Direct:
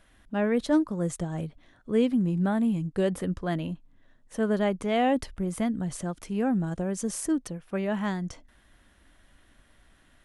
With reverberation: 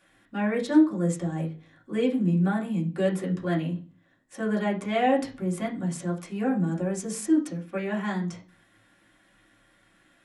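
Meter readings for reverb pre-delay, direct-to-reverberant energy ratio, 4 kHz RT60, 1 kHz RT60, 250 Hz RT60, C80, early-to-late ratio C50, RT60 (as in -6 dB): 3 ms, -3.5 dB, 0.40 s, 0.35 s, 0.50 s, 18.0 dB, 12.0 dB, 0.40 s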